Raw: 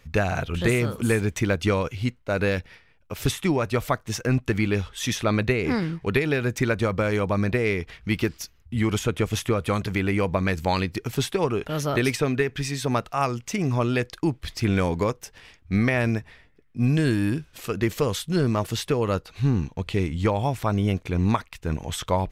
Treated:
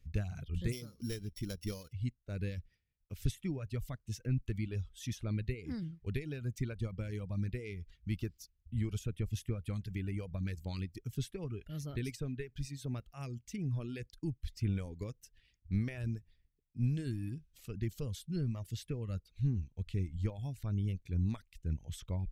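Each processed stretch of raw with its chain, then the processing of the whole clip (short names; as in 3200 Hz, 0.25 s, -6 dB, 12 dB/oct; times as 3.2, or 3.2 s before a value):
0.72–1.93 sample sorter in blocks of 8 samples + bell 100 Hz -7 dB 1.2 oct
whole clip: passive tone stack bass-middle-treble 10-0-1; reverb removal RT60 1.1 s; gain +4 dB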